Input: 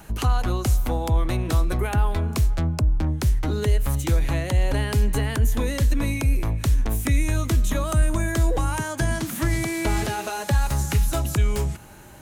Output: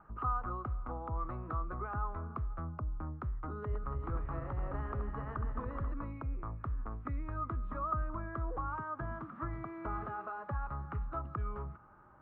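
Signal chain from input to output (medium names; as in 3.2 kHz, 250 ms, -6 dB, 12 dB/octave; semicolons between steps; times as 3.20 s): 3.56–5.92 s: backward echo that repeats 141 ms, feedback 72%, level -7.5 dB; four-pole ladder low-pass 1.3 kHz, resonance 80%; trim -5.5 dB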